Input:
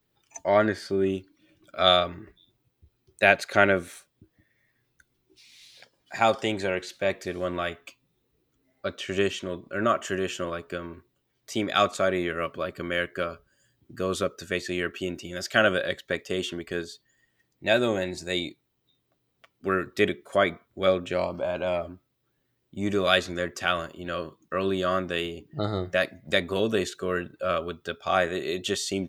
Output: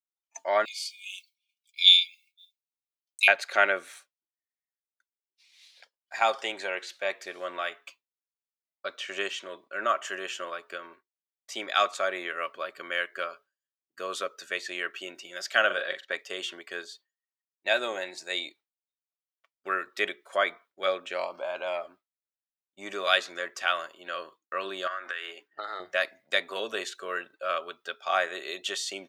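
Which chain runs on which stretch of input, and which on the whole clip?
0.65–3.28 brick-wall FIR high-pass 2100 Hz + high shelf 3300 Hz +11.5 dB + comb 4.5 ms, depth 63%
15.66–16.12 LPF 3600 Hz 6 dB/oct + doubler 42 ms -7 dB
24.87–25.8 HPF 320 Hz + bell 1600 Hz +14 dB 0.97 oct + compressor 16:1, threshold -28 dBFS
whole clip: HPF 730 Hz 12 dB/oct; expander -48 dBFS; high shelf 8800 Hz -8 dB

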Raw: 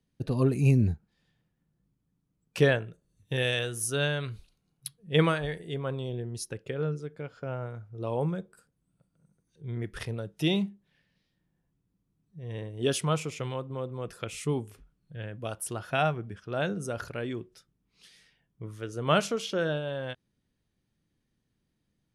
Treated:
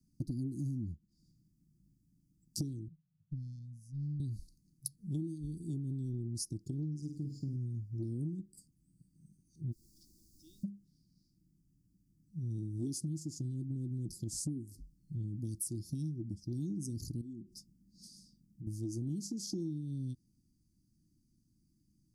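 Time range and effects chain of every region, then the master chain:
2.88–4.2 double band-pass 370 Hz, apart 2.5 oct + tube stage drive 37 dB, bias 0.45
6.97–7.56 high shelf 11000 Hz +5 dB + flutter echo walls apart 8.6 m, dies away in 0.46 s
9.71–10.63 ladder band-pass 1700 Hz, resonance 50% + added noise pink -68 dBFS
17.21–18.67 bell 210 Hz +12.5 dB 0.41 oct + compressor 5:1, threshold -48 dBFS
whole clip: Chebyshev band-stop 330–4700 Hz, order 5; dynamic EQ 320 Hz, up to +6 dB, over -46 dBFS, Q 2.6; compressor 16:1, threshold -40 dBFS; gain +5.5 dB

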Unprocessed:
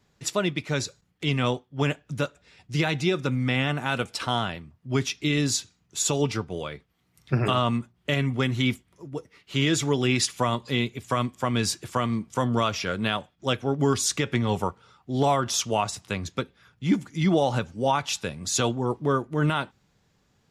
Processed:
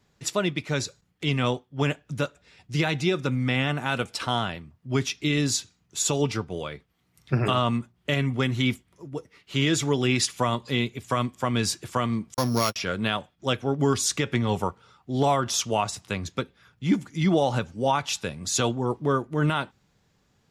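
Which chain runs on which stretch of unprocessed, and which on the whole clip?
12.34–12.76 sample sorter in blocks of 8 samples + gate -27 dBFS, range -50 dB
whole clip: dry

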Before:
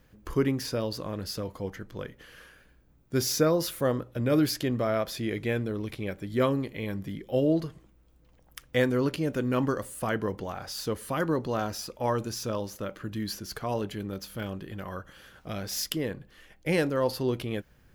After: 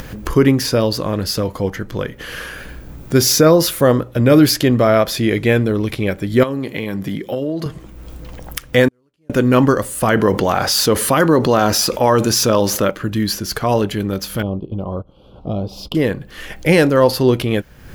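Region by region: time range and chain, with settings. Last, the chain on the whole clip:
6.43–7.66 HPF 130 Hz + compressor 8:1, threshold -32 dBFS
8.88–9.3 CVSD 64 kbps + flipped gate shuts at -31 dBFS, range -40 dB + upward expander, over -57 dBFS
10.17–12.91 low shelf 84 Hz -10.5 dB + fast leveller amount 50%
14.42–15.95 gate -41 dBFS, range -12 dB + Butterworth band-stop 1800 Hz, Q 0.69 + air absorption 450 m
whole clip: upward compressor, threshold -34 dBFS; maximiser +15.5 dB; gain -1 dB

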